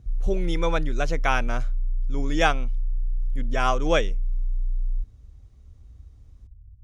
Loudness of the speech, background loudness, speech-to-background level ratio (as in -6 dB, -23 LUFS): -26.5 LUFS, -31.5 LUFS, 5.0 dB